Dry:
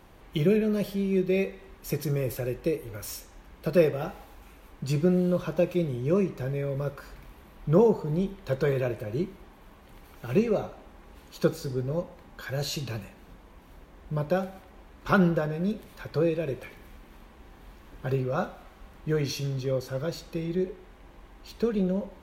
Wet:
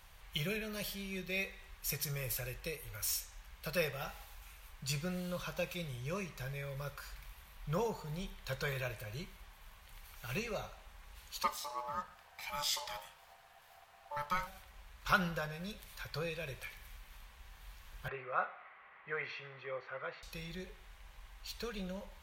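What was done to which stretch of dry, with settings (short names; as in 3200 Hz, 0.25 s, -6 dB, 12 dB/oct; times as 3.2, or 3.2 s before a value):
11.43–14.47 ring modulator 730 Hz
18.08–20.23 speaker cabinet 330–2400 Hz, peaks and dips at 410 Hz +4 dB, 720 Hz +3 dB, 1200 Hz +6 dB, 2000 Hz +8 dB
whole clip: passive tone stack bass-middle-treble 10-0-10; gain +3 dB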